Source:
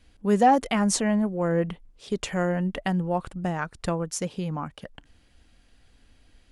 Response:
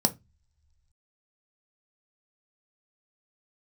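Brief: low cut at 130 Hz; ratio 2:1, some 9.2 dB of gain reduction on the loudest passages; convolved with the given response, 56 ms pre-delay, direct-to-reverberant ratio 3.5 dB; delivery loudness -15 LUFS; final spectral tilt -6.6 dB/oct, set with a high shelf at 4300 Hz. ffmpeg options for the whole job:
-filter_complex "[0:a]highpass=130,highshelf=f=4.3k:g=-6.5,acompressor=threshold=-31dB:ratio=2,asplit=2[a][b];[1:a]atrim=start_sample=2205,adelay=56[c];[b][c]afir=irnorm=-1:irlink=0,volume=-13dB[d];[a][d]amix=inputs=2:normalize=0,volume=11dB"

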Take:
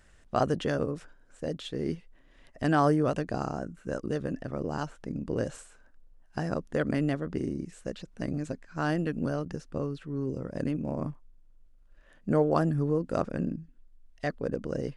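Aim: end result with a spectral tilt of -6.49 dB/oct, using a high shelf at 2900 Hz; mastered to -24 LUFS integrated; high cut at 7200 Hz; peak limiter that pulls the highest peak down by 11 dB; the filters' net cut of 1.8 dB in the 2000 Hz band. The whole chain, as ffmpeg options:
-af "lowpass=7.2k,equalizer=f=2k:t=o:g=-4.5,highshelf=f=2.9k:g=6,volume=10.5dB,alimiter=limit=-11.5dB:level=0:latency=1"

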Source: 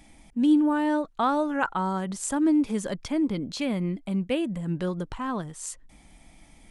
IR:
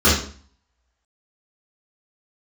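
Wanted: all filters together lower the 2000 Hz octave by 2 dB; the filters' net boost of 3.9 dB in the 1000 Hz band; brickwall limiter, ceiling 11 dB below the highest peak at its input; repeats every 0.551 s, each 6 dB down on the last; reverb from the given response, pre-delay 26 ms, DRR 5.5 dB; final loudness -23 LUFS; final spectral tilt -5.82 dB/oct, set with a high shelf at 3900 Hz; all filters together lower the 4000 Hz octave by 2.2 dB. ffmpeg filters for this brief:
-filter_complex "[0:a]equalizer=f=1k:t=o:g=6,equalizer=f=2k:t=o:g=-6.5,highshelf=f=3.9k:g=3.5,equalizer=f=4k:t=o:g=-3,alimiter=limit=-21.5dB:level=0:latency=1,aecho=1:1:551|1102|1653|2204|2755|3306:0.501|0.251|0.125|0.0626|0.0313|0.0157,asplit=2[a][b];[1:a]atrim=start_sample=2205,adelay=26[c];[b][c]afir=irnorm=-1:irlink=0,volume=-28.5dB[d];[a][d]amix=inputs=2:normalize=0,volume=4dB"

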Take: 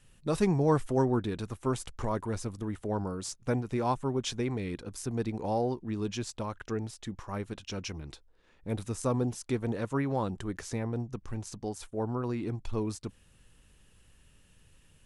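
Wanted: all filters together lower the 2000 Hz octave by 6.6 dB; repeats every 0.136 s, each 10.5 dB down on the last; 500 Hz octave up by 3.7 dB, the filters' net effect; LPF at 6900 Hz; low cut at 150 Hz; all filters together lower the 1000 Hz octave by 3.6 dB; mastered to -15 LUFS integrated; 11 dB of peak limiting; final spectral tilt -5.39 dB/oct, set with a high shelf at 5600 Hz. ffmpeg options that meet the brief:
-af "highpass=150,lowpass=6.9k,equalizer=f=500:t=o:g=6,equalizer=f=1k:t=o:g=-5.5,equalizer=f=2k:t=o:g=-8,highshelf=f=5.6k:g=6,alimiter=limit=-22.5dB:level=0:latency=1,aecho=1:1:136|272|408:0.299|0.0896|0.0269,volume=19.5dB"

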